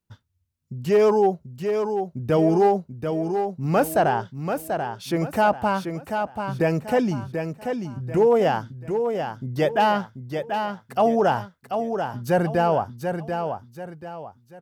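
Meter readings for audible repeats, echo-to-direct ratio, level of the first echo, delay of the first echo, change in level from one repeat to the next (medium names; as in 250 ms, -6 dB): 3, -6.0 dB, -6.5 dB, 737 ms, -9.0 dB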